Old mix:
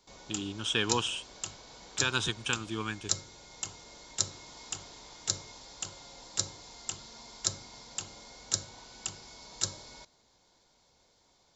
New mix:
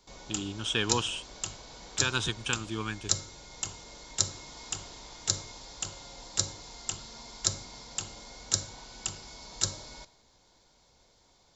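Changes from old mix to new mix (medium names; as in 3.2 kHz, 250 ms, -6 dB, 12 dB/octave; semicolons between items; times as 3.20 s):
background: send on; master: add bass shelf 79 Hz +7.5 dB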